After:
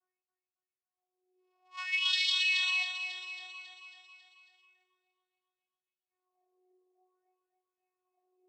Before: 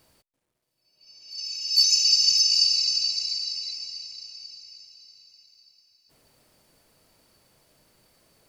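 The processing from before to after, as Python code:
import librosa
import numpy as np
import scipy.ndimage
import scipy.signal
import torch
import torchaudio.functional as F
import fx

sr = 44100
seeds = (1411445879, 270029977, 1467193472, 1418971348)

p1 = fx.env_lowpass(x, sr, base_hz=500.0, full_db=-20.0)
p2 = fx.high_shelf(p1, sr, hz=2200.0, db=8.5)
p3 = fx.vocoder(p2, sr, bands=4, carrier='saw', carrier_hz=367.0)
p4 = fx.wah_lfo(p3, sr, hz=0.56, low_hz=420.0, high_hz=3900.0, q=6.8)
p5 = fx.resonator_bank(p4, sr, root=54, chord='major', decay_s=0.25)
p6 = p5 + fx.echo_feedback(p5, sr, ms=273, feedback_pct=58, wet_db=-4.5, dry=0)
p7 = fx.env_flatten(p6, sr, amount_pct=50, at=(2.02, 2.83))
y = p7 * librosa.db_to_amplitude(7.5)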